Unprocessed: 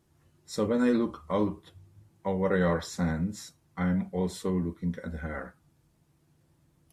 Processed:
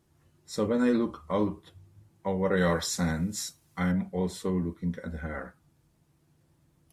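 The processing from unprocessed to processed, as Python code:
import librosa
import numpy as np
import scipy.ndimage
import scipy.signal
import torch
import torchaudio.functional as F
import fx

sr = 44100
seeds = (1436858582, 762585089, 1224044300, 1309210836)

y = fx.high_shelf(x, sr, hz=2900.0, db=11.5, at=(2.57, 3.92))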